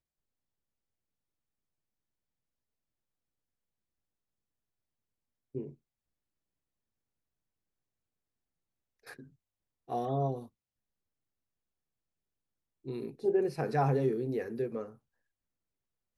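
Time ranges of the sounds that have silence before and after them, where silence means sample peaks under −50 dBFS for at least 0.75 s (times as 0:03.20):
0:05.55–0:05.74
0:09.07–0:10.47
0:12.85–0:14.95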